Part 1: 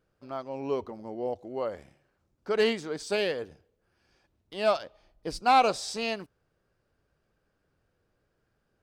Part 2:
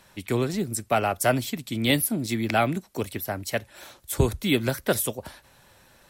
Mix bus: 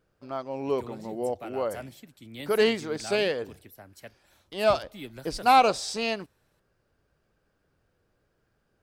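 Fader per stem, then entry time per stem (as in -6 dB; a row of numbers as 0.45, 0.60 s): +2.5, -18.5 dB; 0.00, 0.50 s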